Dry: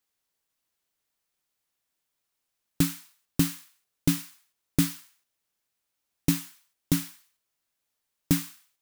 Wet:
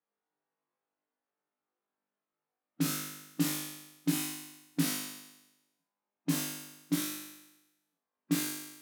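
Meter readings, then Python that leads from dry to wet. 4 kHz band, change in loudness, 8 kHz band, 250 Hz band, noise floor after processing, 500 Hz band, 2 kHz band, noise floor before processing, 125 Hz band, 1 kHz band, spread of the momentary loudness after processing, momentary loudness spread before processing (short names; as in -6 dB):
-1.5 dB, -6.0 dB, -1.5 dB, -4.5 dB, under -85 dBFS, -4.0 dB, -1.0 dB, -82 dBFS, -8.5 dB, +0.5 dB, 11 LU, 17 LU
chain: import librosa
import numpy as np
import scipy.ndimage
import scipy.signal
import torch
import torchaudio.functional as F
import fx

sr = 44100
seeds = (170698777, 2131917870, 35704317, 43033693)

p1 = fx.schmitt(x, sr, flips_db=-23.0)
p2 = x + F.gain(torch.from_numpy(p1), -4.0).numpy()
p3 = fx.wow_flutter(p2, sr, seeds[0], rate_hz=2.1, depth_cents=18.0)
p4 = fx.hpss(p3, sr, part='percussive', gain_db=-15)
p5 = fx.env_lowpass(p4, sr, base_hz=1100.0, full_db=-29.0)
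p6 = scipy.signal.sosfilt(scipy.signal.butter(4, 180.0, 'highpass', fs=sr, output='sos'), p5)
p7 = p6 + fx.room_flutter(p6, sr, wall_m=3.4, rt60_s=1.0, dry=0)
y = F.gain(torch.from_numpy(p7), 2.0).numpy()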